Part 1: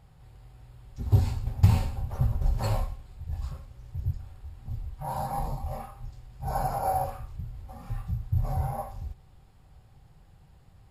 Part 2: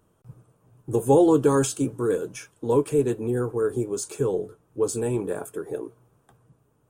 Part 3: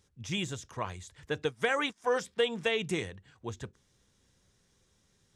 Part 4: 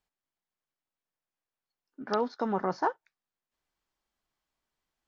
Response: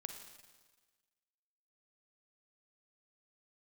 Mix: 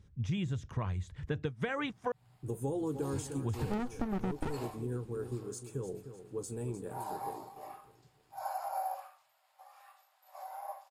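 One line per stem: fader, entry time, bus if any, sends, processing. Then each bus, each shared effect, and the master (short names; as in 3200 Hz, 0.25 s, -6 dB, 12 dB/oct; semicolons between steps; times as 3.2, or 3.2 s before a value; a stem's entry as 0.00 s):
-7.0 dB, 1.90 s, no send, no echo send, steep high-pass 590 Hz 72 dB/oct
-16.5 dB, 1.55 s, no send, echo send -11.5 dB, tone controls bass +9 dB, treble +3 dB
0.0 dB, 0.00 s, muted 2.12–3.13, no send, no echo send, tone controls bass +14 dB, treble -10 dB
+1.5 dB, 1.60 s, no send, no echo send, running maximum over 65 samples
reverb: off
echo: feedback echo 0.303 s, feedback 37%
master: compressor 6:1, threshold -31 dBFS, peak gain reduction 9.5 dB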